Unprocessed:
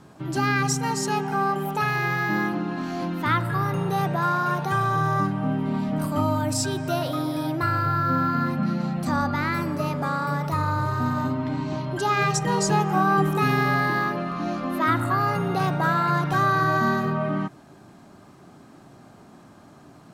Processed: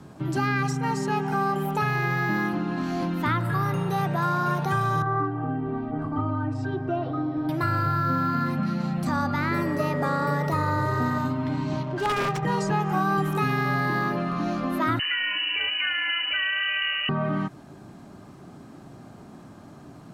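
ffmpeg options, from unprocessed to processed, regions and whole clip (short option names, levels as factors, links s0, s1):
-filter_complex "[0:a]asettb=1/sr,asplit=3[s0][s1][s2];[s0]atrim=end=5.024[s3];[s1]atrim=start=5.02:end=7.49,asetpts=PTS-STARTPTS,afade=t=in:d=0.004:c=qsin,afade=t=out:st=2.466:d=0.004:c=qsin,lowpass=1400,aecho=1:1:2.6:0.95,atrim=end_sample=108927,flanger=delay=1.2:depth=2.1:regen=-75:speed=1.8:shape=sinusoidal[s4];[s2]atrim=start=7.486[s5];[s3][s4]acrossfade=d=0.004:c1=hsin:c2=qsin[s6];[s6][s5]acrossfade=d=0.004:c1=qsin:c2=hsin,asettb=1/sr,asplit=3[s7][s8][s9];[s7]atrim=end=9.514[s10];[s8]atrim=start=9.51:end=11.18,asetpts=PTS-STARTPTS,afade=t=in:d=0.004:c=qsin,afade=t=out:st=1.666:d=0.004:c=qsin,aeval=exprs='val(0)+0.0126*sin(2*PI*1900*n/s)':c=same,equalizer=f=450:t=o:w=1:g=9.5[s11];[s9]atrim=start=11.176[s12];[s10][s11]acrossfade=d=0.004:c1=hsin:c2=qsin[s13];[s13][s12]acrossfade=d=0.004:c1=qsin:c2=hsin,asettb=1/sr,asplit=3[s14][s15][s16];[s14]atrim=end=11.834[s17];[s15]atrim=start=11.83:end=12.43,asetpts=PTS-STARTPTS,afade=t=in:d=0.004:c=qsin,afade=t=out:st=0.596:d=0.004:c=qsin,lowshelf=f=240:g=-8,aeval=exprs='(mod(5.96*val(0)+1,2)-1)/5.96':c=same,adynamicsmooth=sensitivity=5.5:basefreq=510[s18];[s16]atrim=start=12.426[s19];[s17][s18]acrossfade=d=0.004:c1=hsin:c2=qsin[s20];[s20][s19]acrossfade=d=0.004:c1=qsin:c2=hsin,asettb=1/sr,asplit=3[s21][s22][s23];[s21]atrim=end=14.994[s24];[s22]atrim=start=14.99:end=17.09,asetpts=PTS-STARTPTS,afade=t=in:d=0.004:c=qsin,afade=t=out:st=2.096:d=0.004:c=qsin,lowshelf=f=350:g=6,lowpass=f=2600:t=q:w=0.5098,lowpass=f=2600:t=q:w=0.6013,lowpass=f=2600:t=q:w=0.9,lowpass=f=2600:t=q:w=2.563,afreqshift=-3100[s25];[s23]atrim=start=17.086[s26];[s24][s25]acrossfade=d=0.004:c1=hsin:c2=qsin[s27];[s27][s26]acrossfade=d=0.004:c1=qsin:c2=hsin,lowshelf=f=420:g=5.5,acrossover=split=87|910|2900[s28][s29][s30][s31];[s28]acompressor=threshold=0.00501:ratio=4[s32];[s29]acompressor=threshold=0.0562:ratio=4[s33];[s30]acompressor=threshold=0.0501:ratio=4[s34];[s31]acompressor=threshold=0.00708:ratio=4[s35];[s32][s33][s34][s35]amix=inputs=4:normalize=0"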